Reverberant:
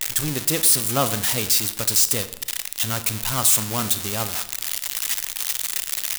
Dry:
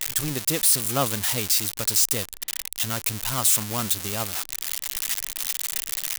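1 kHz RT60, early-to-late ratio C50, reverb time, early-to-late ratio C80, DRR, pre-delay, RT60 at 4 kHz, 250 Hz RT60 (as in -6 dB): 0.85 s, 13.5 dB, 0.85 s, 15.5 dB, 11.5 dB, 29 ms, 0.60 s, 0.95 s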